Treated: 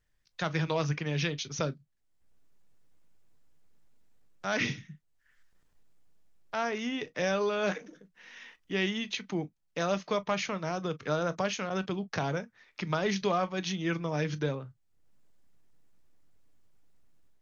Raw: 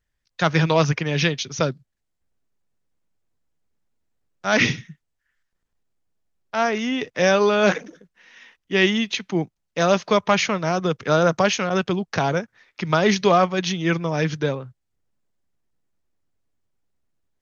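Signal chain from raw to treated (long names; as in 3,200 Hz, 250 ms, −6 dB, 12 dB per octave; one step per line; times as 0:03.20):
automatic gain control gain up to 6 dB
convolution reverb, pre-delay 7 ms, DRR 13.5 dB
downward compressor 1.5 to 1, threshold −54 dBFS, peak gain reduction 15.5 dB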